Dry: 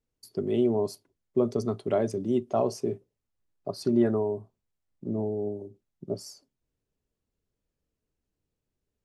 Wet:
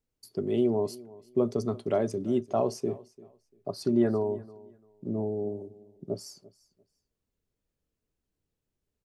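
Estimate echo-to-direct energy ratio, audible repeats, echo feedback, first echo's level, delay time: -21.0 dB, 2, 22%, -21.0 dB, 0.344 s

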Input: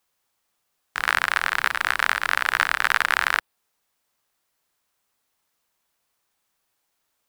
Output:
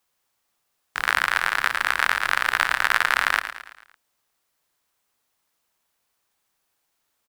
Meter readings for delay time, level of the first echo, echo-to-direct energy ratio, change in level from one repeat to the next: 0.111 s, -11.0 dB, -10.0 dB, -6.0 dB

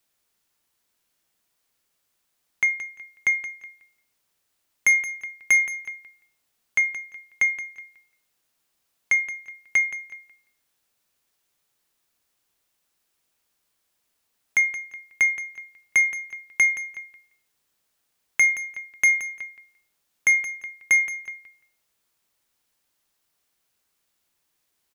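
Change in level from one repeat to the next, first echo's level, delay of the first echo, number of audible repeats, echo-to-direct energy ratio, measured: -16.0 dB, -12.0 dB, 0.173 s, 2, -12.0 dB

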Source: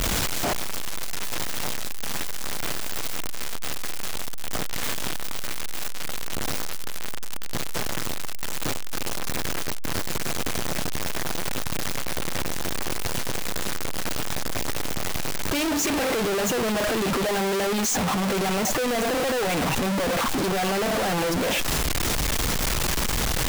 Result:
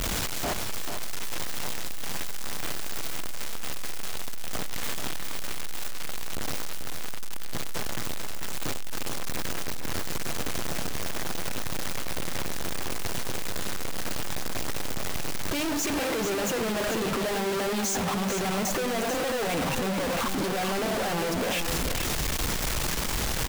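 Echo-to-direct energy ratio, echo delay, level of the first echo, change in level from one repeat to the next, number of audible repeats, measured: -7.0 dB, 90 ms, -19.5 dB, no steady repeat, 2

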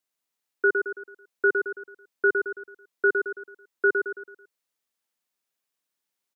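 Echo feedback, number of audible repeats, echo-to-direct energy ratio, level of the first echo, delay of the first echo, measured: 43%, 5, -4.0 dB, -5.0 dB, 0.11 s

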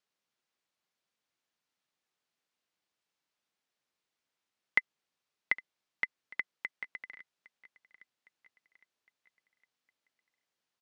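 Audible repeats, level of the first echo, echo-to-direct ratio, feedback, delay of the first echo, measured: 3, -22.0 dB, -20.5 dB, 53%, 0.81 s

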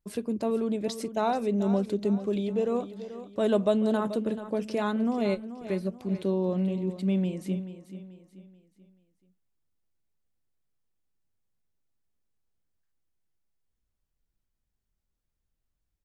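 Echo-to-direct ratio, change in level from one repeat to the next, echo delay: -12.0 dB, -8.0 dB, 0.434 s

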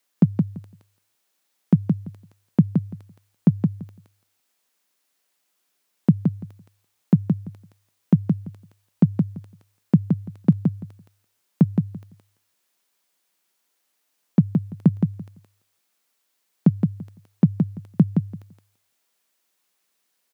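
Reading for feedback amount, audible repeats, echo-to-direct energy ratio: 16%, 2, -5.0 dB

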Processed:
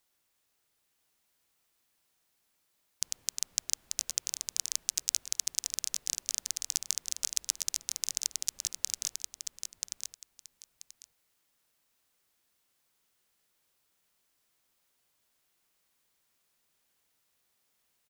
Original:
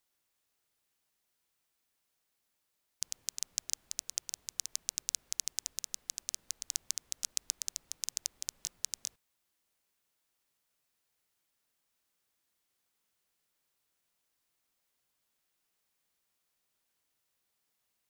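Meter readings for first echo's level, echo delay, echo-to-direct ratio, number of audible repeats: -5.0 dB, 0.984 s, -5.0 dB, 2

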